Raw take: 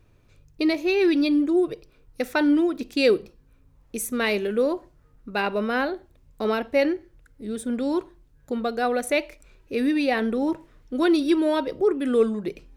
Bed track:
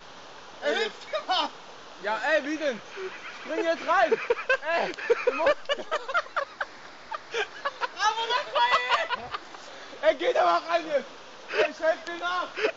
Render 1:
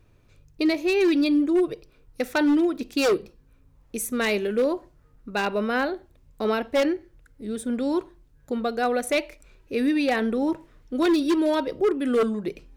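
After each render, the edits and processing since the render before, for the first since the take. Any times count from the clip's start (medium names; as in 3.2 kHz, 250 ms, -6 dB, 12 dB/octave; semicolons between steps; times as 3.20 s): wavefolder -15 dBFS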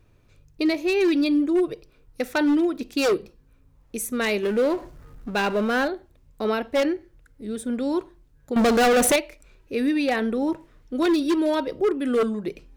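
4.43–5.88 s: power-law waveshaper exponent 0.7; 8.56–9.16 s: waveshaping leveller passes 5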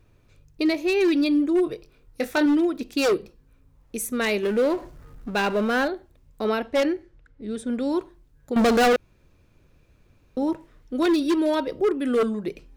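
1.64–2.46 s: doubling 23 ms -7.5 dB; 6.49–7.86 s: level-controlled noise filter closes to 3 kHz, open at -22 dBFS; 8.96–10.37 s: room tone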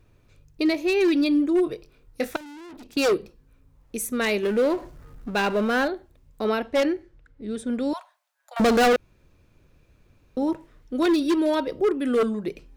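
2.36–2.97 s: valve stage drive 41 dB, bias 0.65; 7.93–8.60 s: steep high-pass 610 Hz 72 dB/octave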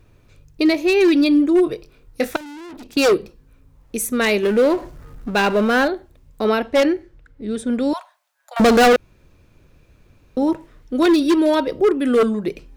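trim +6 dB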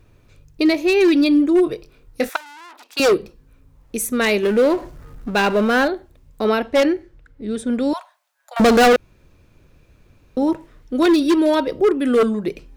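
2.29–3.00 s: resonant high-pass 990 Hz, resonance Q 1.5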